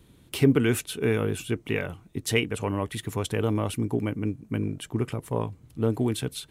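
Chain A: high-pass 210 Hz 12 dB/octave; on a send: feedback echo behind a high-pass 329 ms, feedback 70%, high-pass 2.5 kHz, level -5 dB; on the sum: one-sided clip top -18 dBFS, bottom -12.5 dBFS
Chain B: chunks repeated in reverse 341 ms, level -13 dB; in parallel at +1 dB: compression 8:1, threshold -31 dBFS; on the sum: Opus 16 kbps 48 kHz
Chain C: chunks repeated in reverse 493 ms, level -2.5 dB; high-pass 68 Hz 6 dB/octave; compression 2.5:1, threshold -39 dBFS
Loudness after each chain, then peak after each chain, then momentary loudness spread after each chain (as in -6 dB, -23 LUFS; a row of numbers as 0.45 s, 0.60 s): -29.5 LUFS, -25.0 LUFS, -38.0 LUFS; -12.5 dBFS, -6.5 dBFS, -19.0 dBFS; 8 LU, 6 LU, 3 LU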